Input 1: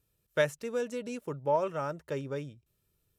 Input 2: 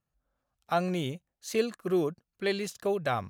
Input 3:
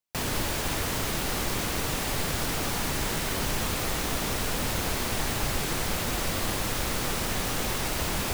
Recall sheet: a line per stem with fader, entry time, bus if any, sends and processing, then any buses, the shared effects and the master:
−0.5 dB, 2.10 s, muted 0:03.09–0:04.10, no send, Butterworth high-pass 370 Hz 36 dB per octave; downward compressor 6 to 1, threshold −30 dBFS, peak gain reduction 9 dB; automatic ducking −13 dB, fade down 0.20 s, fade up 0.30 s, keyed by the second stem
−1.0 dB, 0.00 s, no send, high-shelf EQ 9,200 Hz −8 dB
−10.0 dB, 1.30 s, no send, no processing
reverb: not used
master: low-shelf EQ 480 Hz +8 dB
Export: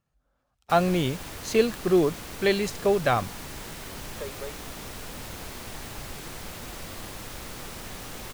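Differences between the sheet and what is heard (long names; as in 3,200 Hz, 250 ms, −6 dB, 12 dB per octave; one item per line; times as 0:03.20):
stem 2 −1.0 dB → +6.5 dB
stem 3: entry 1.30 s → 0.55 s
master: missing low-shelf EQ 480 Hz +8 dB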